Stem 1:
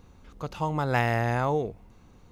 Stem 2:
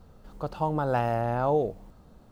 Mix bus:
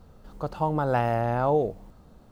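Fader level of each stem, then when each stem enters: -19.0 dB, +1.0 dB; 0.00 s, 0.00 s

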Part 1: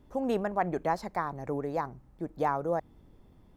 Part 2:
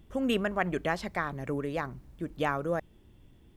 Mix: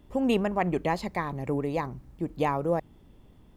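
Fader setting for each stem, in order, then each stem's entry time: +1.0 dB, -1.5 dB; 0.00 s, 0.00 s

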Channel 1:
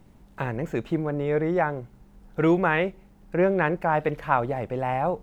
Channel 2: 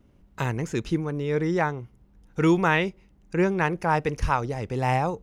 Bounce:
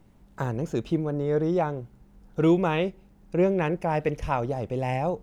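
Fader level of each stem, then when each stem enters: -4.0 dB, -8.0 dB; 0.00 s, 0.00 s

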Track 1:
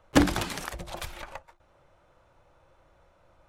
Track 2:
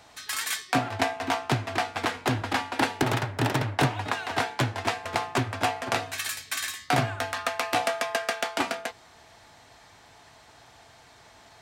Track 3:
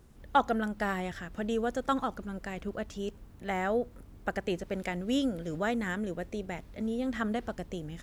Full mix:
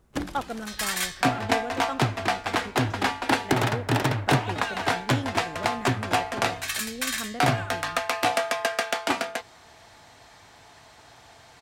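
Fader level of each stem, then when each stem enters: -10.5 dB, +2.0 dB, -5.0 dB; 0.00 s, 0.50 s, 0.00 s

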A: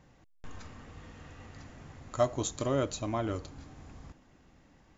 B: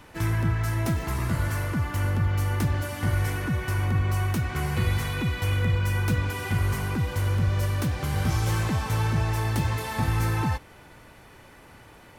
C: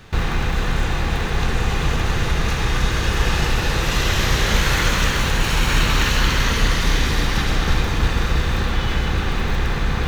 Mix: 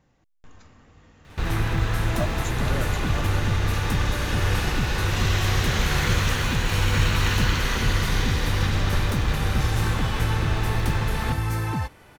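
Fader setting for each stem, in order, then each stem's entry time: -4.0 dB, -1.0 dB, -6.0 dB; 0.00 s, 1.30 s, 1.25 s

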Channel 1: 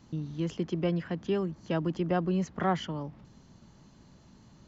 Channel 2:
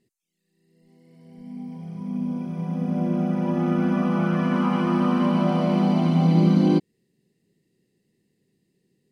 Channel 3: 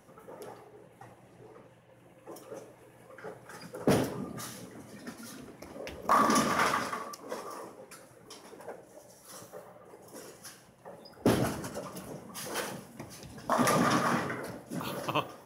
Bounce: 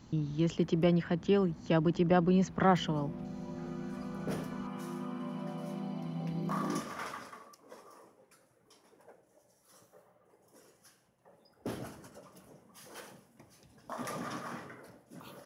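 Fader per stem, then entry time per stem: +2.0 dB, -19.0 dB, -13.5 dB; 0.00 s, 0.00 s, 0.40 s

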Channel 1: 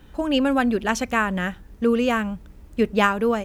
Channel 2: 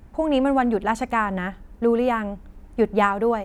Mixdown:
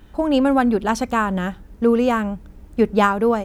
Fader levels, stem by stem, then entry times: -1.0 dB, -3.0 dB; 0.00 s, 0.00 s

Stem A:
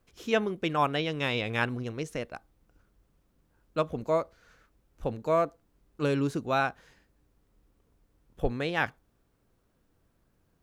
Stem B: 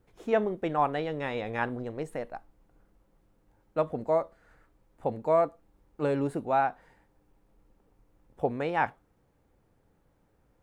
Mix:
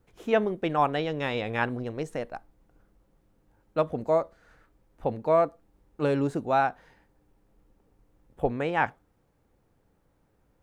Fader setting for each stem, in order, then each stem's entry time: -8.0 dB, -0.5 dB; 0.00 s, 0.00 s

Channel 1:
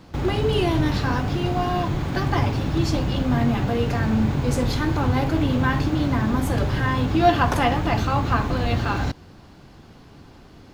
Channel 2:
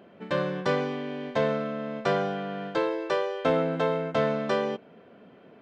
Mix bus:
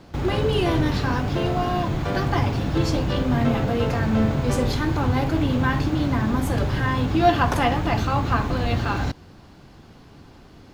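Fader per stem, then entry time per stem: -0.5 dB, -4.5 dB; 0.00 s, 0.00 s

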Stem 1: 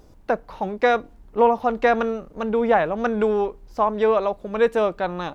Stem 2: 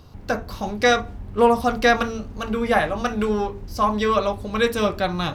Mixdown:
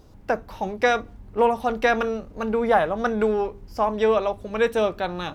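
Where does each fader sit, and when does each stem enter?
-1.5 dB, -10.5 dB; 0.00 s, 0.00 s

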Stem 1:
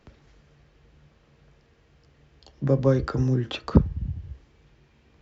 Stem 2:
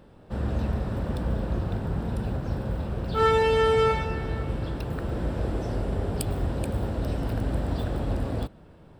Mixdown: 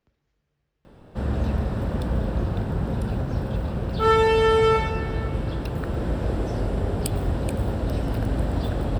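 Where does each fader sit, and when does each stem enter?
-18.5 dB, +3.0 dB; 0.00 s, 0.85 s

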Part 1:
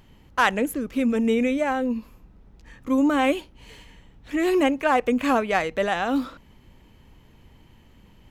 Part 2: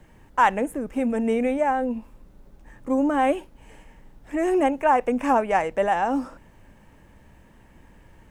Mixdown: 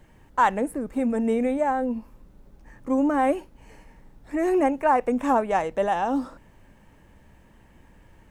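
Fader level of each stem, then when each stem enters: -15.0 dB, -2.0 dB; 0.00 s, 0.00 s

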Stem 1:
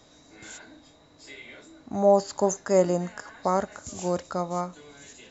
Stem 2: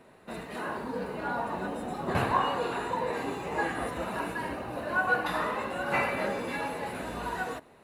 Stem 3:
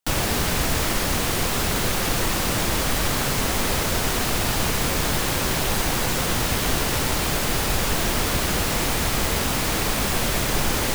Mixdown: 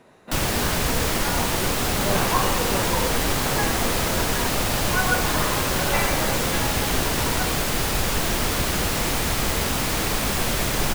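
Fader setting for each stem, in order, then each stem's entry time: -12.0 dB, +2.5 dB, -0.5 dB; 0.00 s, 0.00 s, 0.25 s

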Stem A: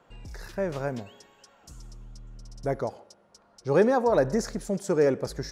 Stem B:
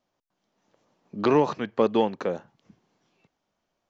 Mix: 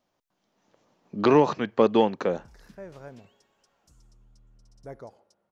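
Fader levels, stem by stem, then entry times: -13.0 dB, +2.0 dB; 2.20 s, 0.00 s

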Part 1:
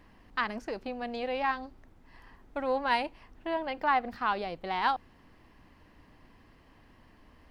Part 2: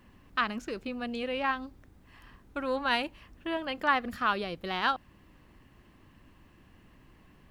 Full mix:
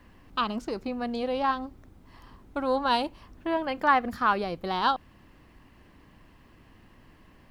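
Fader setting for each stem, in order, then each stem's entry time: -1.0 dB, +0.5 dB; 0.00 s, 0.00 s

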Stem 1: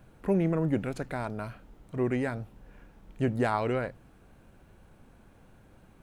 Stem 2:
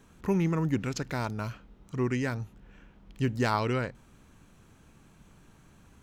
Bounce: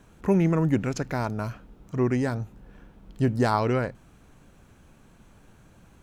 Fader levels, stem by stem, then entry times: -1.5 dB, 0.0 dB; 0.00 s, 0.00 s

